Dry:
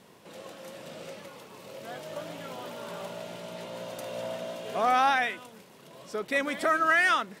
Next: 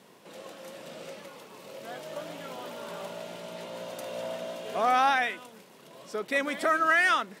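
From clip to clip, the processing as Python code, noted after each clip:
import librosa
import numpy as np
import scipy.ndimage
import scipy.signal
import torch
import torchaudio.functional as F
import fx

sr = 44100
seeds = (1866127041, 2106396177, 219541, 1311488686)

y = scipy.signal.sosfilt(scipy.signal.butter(2, 160.0, 'highpass', fs=sr, output='sos'), x)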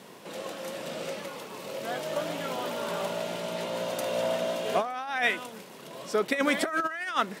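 y = fx.over_compress(x, sr, threshold_db=-29.0, ratio=-0.5)
y = F.gain(torch.from_numpy(y), 3.5).numpy()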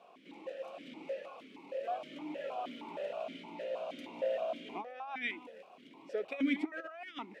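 y = fx.vowel_held(x, sr, hz=6.4)
y = F.gain(torch.from_numpy(y), 1.0).numpy()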